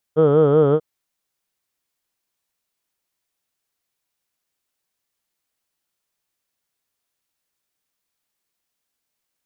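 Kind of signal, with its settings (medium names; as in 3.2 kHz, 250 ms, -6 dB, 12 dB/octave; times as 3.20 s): formant vowel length 0.64 s, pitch 151 Hz, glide -0.5 st, vibrato depth 1.1 st, F1 470 Hz, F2 1.3 kHz, F3 3.2 kHz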